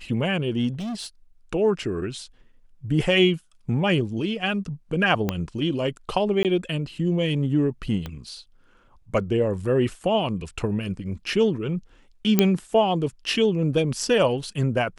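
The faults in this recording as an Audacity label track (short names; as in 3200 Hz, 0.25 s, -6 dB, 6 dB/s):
0.730000	1.060000	clipped -27.5 dBFS
5.290000	5.290000	pop -10 dBFS
6.430000	6.450000	gap 18 ms
8.060000	8.060000	pop -18 dBFS
12.390000	12.390000	pop -3 dBFS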